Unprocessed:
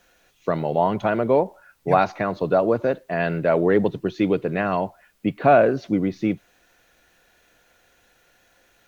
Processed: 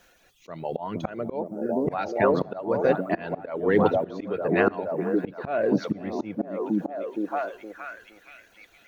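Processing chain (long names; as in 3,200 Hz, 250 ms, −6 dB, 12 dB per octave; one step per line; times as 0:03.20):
harmonic and percussive parts rebalanced percussive +3 dB
reverb reduction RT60 0.95 s
echo through a band-pass that steps 467 ms, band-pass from 240 Hz, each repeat 0.7 octaves, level −0.5 dB
volume swells 394 ms
on a send at −23 dB: convolution reverb RT60 1.0 s, pre-delay 3 ms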